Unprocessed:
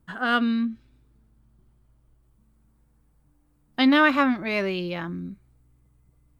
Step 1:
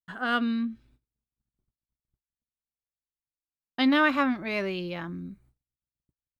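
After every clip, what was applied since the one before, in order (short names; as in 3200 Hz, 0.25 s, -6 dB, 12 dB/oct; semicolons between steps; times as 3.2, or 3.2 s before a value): gate -55 dBFS, range -42 dB; gain -4 dB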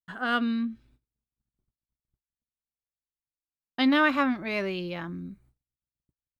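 nothing audible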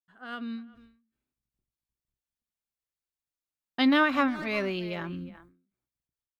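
opening faded in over 1.25 s; speakerphone echo 0.36 s, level -14 dB; ending taper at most 110 dB/s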